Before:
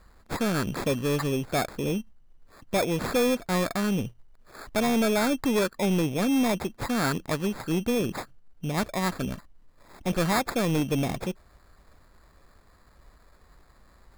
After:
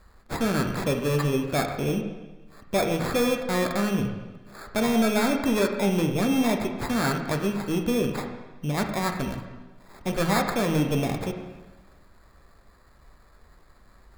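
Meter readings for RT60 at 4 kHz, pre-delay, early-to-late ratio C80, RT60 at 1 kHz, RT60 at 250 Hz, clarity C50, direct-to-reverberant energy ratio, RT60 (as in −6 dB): 1.1 s, 4 ms, 8.0 dB, 1.2 s, 1.2 s, 6.5 dB, 3.5 dB, 1.2 s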